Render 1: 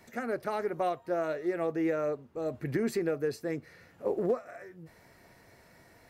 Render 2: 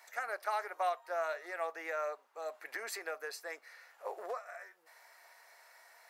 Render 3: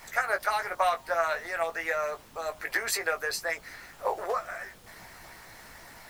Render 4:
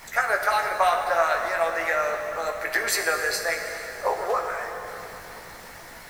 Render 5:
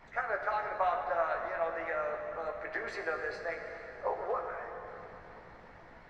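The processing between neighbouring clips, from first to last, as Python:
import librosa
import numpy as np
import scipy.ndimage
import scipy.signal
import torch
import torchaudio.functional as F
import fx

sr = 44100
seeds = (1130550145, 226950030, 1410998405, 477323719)

y1 = scipy.signal.sosfilt(scipy.signal.butter(4, 740.0, 'highpass', fs=sr, output='sos'), x)
y1 = fx.peak_eq(y1, sr, hz=2900.0, db=-3.0, octaves=0.77)
y1 = y1 * 10.0 ** (2.0 / 20.0)
y2 = fx.dmg_noise_colour(y1, sr, seeds[0], colour='pink', level_db=-64.0)
y2 = fx.hpss(y2, sr, part='percussive', gain_db=9)
y2 = fx.doubler(y2, sr, ms=18.0, db=-7)
y2 = y2 * 10.0 ** (4.0 / 20.0)
y3 = fx.rev_plate(y2, sr, seeds[1], rt60_s=3.7, hf_ratio=0.8, predelay_ms=0, drr_db=3.5)
y3 = y3 * 10.0 ** (4.0 / 20.0)
y4 = fx.spacing_loss(y3, sr, db_at_10k=39)
y4 = y4 * 10.0 ** (-6.0 / 20.0)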